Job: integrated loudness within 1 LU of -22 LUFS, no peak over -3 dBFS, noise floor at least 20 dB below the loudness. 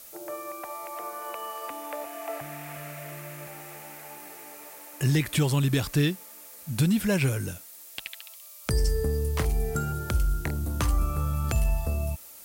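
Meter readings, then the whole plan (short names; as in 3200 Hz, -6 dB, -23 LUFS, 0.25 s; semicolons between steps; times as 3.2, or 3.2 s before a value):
noise floor -47 dBFS; noise floor target -49 dBFS; loudness -29.0 LUFS; peak -13.5 dBFS; loudness target -22.0 LUFS
-> noise print and reduce 6 dB; gain +7 dB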